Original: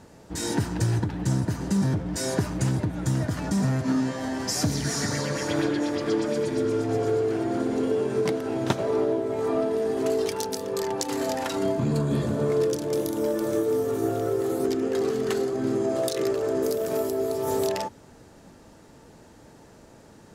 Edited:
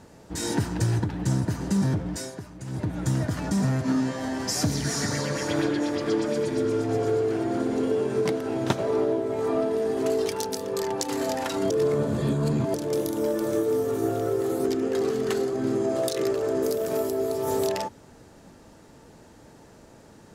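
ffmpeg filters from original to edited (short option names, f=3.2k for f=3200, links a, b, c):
-filter_complex "[0:a]asplit=5[a][b][c][d][e];[a]atrim=end=2.32,asetpts=PTS-STARTPTS,afade=t=out:st=2.08:d=0.24:silence=0.211349[f];[b]atrim=start=2.32:end=2.66,asetpts=PTS-STARTPTS,volume=-13.5dB[g];[c]atrim=start=2.66:end=11.702,asetpts=PTS-STARTPTS,afade=t=in:d=0.24:silence=0.211349[h];[d]atrim=start=11.698:end=12.742,asetpts=PTS-STARTPTS,areverse[i];[e]atrim=start=12.738[j];[f][g][h]concat=n=3:v=0:a=1[k];[k][i]acrossfade=d=0.004:c1=hsin:c2=hsin[l];[l][j]acrossfade=d=0.004:c1=hsin:c2=hsin"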